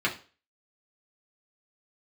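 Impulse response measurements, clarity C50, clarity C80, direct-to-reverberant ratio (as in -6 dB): 13.0 dB, 18.5 dB, -4.5 dB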